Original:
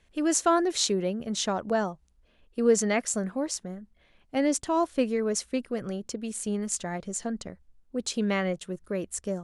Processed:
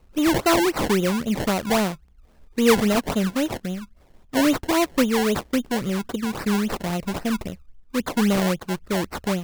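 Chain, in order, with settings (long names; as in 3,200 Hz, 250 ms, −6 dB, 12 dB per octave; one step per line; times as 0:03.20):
low-shelf EQ 330 Hz +8 dB
in parallel at −5.5 dB: hard clipping −23.5 dBFS, distortion −8 dB
on the sum: sample-and-hold swept by an LFO 25×, swing 100% 3.7 Hz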